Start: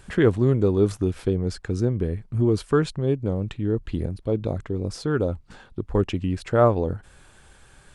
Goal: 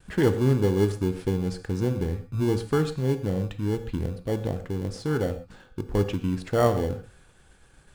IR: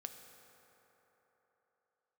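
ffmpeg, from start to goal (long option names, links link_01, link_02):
-filter_complex "[0:a]asplit=2[link_01][link_02];[link_02]acrusher=samples=35:mix=1:aa=0.000001,volume=-9.5dB[link_03];[link_01][link_03]amix=inputs=2:normalize=0,agate=range=-33dB:threshold=-46dB:ratio=3:detection=peak[link_04];[1:a]atrim=start_sample=2205,atrim=end_sample=6174[link_05];[link_04][link_05]afir=irnorm=-1:irlink=0"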